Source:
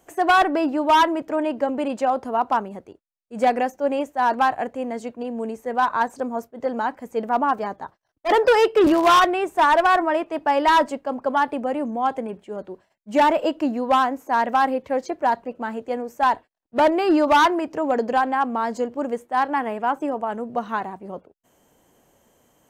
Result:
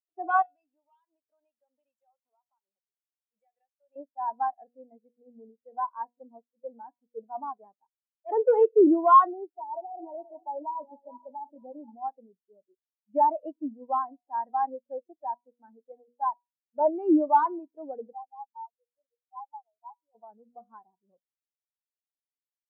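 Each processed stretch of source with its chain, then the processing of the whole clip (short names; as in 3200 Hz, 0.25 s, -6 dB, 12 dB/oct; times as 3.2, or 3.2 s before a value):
0.42–3.96 weighting filter ITU-R 468 + compressor 4:1, threshold -35 dBFS
5.71–6.31 HPF 120 Hz + Doppler distortion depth 0.14 ms
9.28–11.95 regenerating reverse delay 0.238 s, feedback 59%, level -11 dB + compressor, threshold -17 dBFS + brick-wall FIR low-pass 1000 Hz
18.12–20.15 spectral contrast raised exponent 2.4 + band-pass 950 Hz, Q 4.2
whole clip: de-hum 241.6 Hz, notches 33; spectral expander 2.5:1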